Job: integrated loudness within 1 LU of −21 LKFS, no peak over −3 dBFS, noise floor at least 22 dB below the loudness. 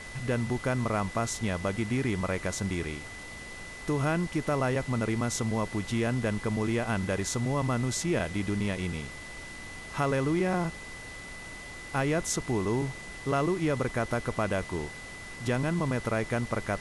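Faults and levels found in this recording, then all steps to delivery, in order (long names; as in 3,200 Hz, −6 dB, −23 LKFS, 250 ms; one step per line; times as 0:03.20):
interfering tone 2,000 Hz; level of the tone −43 dBFS; background noise floor −43 dBFS; target noise floor −52 dBFS; integrated loudness −30.0 LKFS; sample peak −15.5 dBFS; target loudness −21.0 LKFS
→ notch filter 2,000 Hz, Q 30
noise reduction from a noise print 9 dB
level +9 dB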